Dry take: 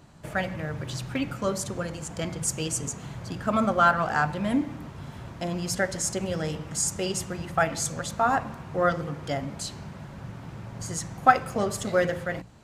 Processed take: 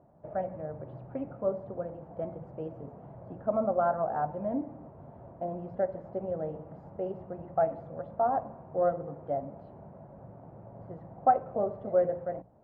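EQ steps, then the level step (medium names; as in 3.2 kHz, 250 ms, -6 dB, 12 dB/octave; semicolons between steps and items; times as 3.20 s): band-pass filter 650 Hz, Q 2.8; distance through air 400 m; tilt EQ -4 dB/octave; 0.0 dB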